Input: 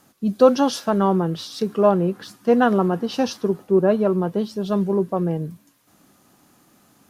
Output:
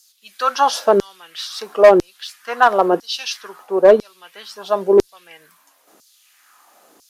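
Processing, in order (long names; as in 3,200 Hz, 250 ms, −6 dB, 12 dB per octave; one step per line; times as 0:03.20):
auto-filter high-pass saw down 1 Hz 350–5,400 Hz
asymmetric clip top −8 dBFS, bottom −6 dBFS
level +4.5 dB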